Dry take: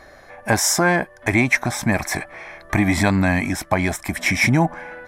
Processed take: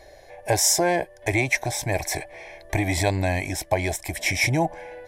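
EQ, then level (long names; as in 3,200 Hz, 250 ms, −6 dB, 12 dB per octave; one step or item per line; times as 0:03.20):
phaser with its sweep stopped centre 530 Hz, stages 4
0.0 dB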